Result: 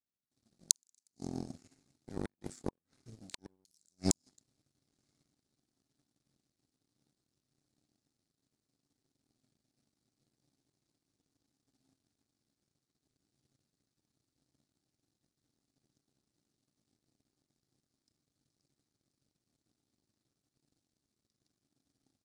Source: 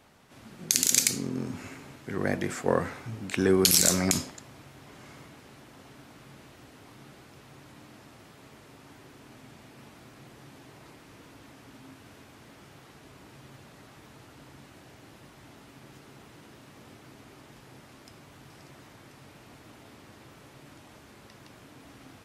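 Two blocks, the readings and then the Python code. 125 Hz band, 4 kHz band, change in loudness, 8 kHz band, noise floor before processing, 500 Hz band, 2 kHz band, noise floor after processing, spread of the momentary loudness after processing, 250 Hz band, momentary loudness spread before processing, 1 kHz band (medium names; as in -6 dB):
-12.5 dB, -15.5 dB, -12.0 dB, -12.5 dB, -53 dBFS, -18.5 dB, -24.5 dB, under -85 dBFS, 18 LU, -12.5 dB, 20 LU, -17.0 dB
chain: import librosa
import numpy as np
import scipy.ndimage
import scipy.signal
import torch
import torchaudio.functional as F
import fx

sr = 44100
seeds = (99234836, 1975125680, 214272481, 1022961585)

y = fx.gate_flip(x, sr, shuts_db=-14.0, range_db=-26)
y = fx.low_shelf_res(y, sr, hz=420.0, db=9.0, q=1.5)
y = fx.power_curve(y, sr, exponent=2.0)
y = fx.band_shelf(y, sr, hz=6300.0, db=15.0, octaves=1.7)
y = fx.notch(y, sr, hz=970.0, q=11.0)
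y = y * 10.0 ** (-8.0 / 20.0)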